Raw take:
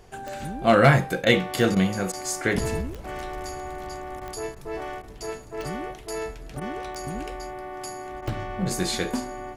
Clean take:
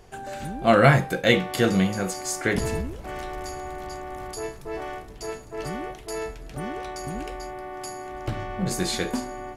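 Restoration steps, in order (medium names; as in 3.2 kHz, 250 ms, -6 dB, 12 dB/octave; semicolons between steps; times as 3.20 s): clip repair -7 dBFS; de-click; interpolate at 1.25/1.75/2.12/4.20/4.55/5.02/6.60/8.21 s, 12 ms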